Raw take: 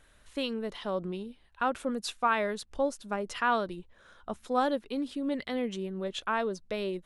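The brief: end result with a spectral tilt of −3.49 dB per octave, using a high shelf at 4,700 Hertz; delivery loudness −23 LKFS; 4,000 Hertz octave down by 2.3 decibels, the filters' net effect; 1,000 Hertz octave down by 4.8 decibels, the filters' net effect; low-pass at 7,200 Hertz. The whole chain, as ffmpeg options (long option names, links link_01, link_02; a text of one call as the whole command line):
ffmpeg -i in.wav -af "lowpass=7200,equalizer=frequency=1000:width_type=o:gain=-6.5,equalizer=frequency=4000:width_type=o:gain=-5,highshelf=frequency=4700:gain=6,volume=11.5dB" out.wav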